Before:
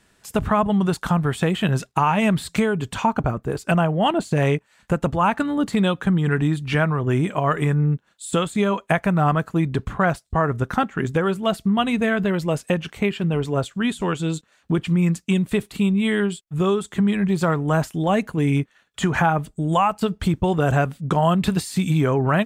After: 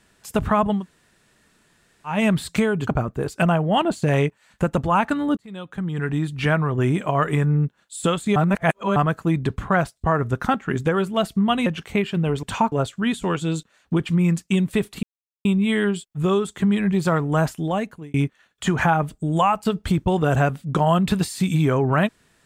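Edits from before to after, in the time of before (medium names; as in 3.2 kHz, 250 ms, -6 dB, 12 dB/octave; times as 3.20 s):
0.78–2.12 s: room tone, crossfade 0.16 s
2.87–3.16 s: move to 13.50 s
5.66–6.80 s: fade in
8.65–9.25 s: reverse
11.95–12.73 s: delete
15.81 s: insert silence 0.42 s
17.89–18.50 s: fade out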